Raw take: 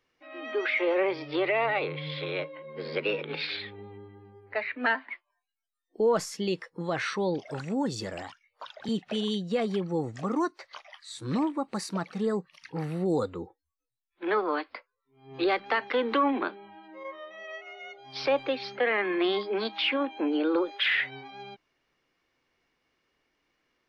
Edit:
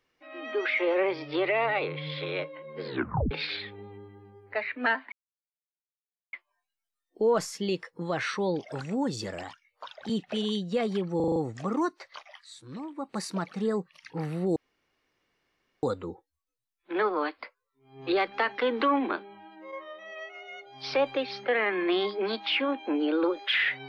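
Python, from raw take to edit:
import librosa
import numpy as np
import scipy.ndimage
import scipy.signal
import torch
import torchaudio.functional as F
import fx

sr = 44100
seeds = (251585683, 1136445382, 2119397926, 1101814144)

y = fx.edit(x, sr, fx.tape_stop(start_s=2.86, length_s=0.45),
    fx.insert_silence(at_s=5.12, length_s=1.21),
    fx.stutter(start_s=9.95, slice_s=0.04, count=6),
    fx.fade_down_up(start_s=10.91, length_s=0.88, db=-11.5, fade_s=0.32),
    fx.insert_room_tone(at_s=13.15, length_s=1.27), tone=tone)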